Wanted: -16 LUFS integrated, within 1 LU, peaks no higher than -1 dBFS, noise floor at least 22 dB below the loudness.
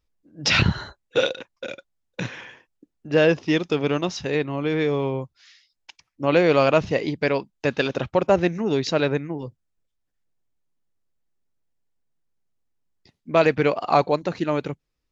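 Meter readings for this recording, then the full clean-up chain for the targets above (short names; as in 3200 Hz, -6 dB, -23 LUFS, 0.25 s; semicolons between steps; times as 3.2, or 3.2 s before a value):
loudness -22.5 LUFS; peak -4.5 dBFS; loudness target -16.0 LUFS
-> gain +6.5 dB; limiter -1 dBFS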